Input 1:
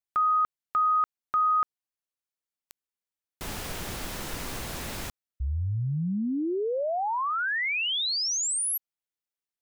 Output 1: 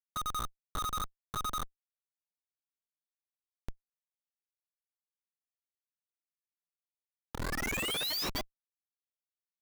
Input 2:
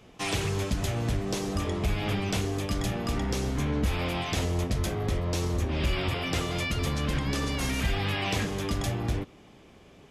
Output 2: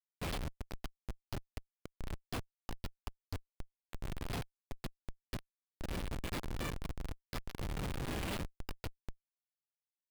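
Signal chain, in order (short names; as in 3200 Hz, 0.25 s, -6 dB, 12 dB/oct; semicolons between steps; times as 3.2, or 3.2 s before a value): low shelf 250 Hz -9 dB; downsampling 11025 Hz; differentiator; flange 0.6 Hz, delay 5.4 ms, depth 7.7 ms, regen +36%; on a send: frequency-shifting echo 0.205 s, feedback 38%, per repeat -52 Hz, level -10 dB; on the sum: Schmitt trigger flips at -40.5 dBFS; gain +13.5 dB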